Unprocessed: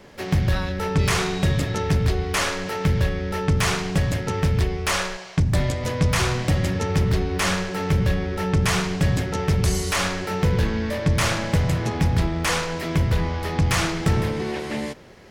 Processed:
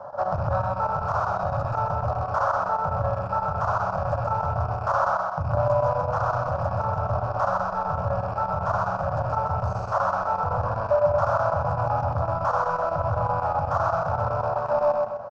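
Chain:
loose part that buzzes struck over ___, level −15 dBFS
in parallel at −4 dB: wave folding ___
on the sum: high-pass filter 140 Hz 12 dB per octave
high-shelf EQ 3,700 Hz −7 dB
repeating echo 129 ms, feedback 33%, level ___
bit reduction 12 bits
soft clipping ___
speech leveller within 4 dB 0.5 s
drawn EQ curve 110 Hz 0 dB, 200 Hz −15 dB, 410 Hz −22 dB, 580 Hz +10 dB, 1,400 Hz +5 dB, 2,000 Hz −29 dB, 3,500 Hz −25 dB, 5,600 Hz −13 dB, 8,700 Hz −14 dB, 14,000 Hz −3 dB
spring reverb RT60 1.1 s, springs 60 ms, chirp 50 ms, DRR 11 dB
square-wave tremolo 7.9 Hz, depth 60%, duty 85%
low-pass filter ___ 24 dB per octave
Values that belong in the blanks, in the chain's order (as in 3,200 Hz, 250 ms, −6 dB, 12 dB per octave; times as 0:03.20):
−31 dBFS, −18.5 dBFS, −4 dB, −20 dBFS, 5,500 Hz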